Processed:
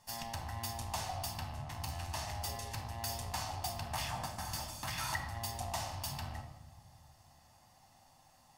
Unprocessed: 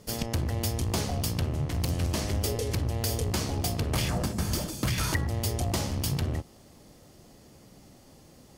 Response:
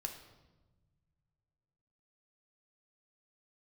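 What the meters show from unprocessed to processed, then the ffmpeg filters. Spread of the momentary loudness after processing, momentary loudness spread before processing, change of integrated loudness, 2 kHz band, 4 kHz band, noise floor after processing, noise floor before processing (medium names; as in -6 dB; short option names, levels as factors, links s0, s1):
5 LU, 2 LU, -10.0 dB, -6.0 dB, -7.5 dB, -65 dBFS, -55 dBFS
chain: -filter_complex "[0:a]lowshelf=f=580:t=q:w=3:g=-10[s0];[1:a]atrim=start_sample=2205[s1];[s0][s1]afir=irnorm=-1:irlink=0,volume=0.501"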